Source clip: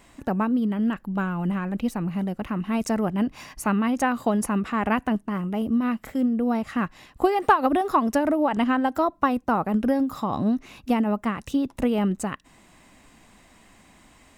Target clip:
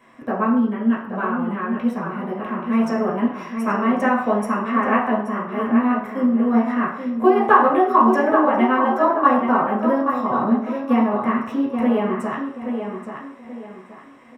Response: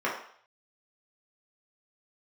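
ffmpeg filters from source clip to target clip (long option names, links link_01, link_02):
-filter_complex "[0:a]asplit=2[link_01][link_02];[link_02]adelay=829,lowpass=frequency=4200:poles=1,volume=-7dB,asplit=2[link_03][link_04];[link_04]adelay=829,lowpass=frequency=4200:poles=1,volume=0.33,asplit=2[link_05][link_06];[link_06]adelay=829,lowpass=frequency=4200:poles=1,volume=0.33,asplit=2[link_07][link_08];[link_08]adelay=829,lowpass=frequency=4200:poles=1,volume=0.33[link_09];[link_01][link_03][link_05][link_07][link_09]amix=inputs=5:normalize=0[link_10];[1:a]atrim=start_sample=2205[link_11];[link_10][link_11]afir=irnorm=-1:irlink=0,volume=-7dB"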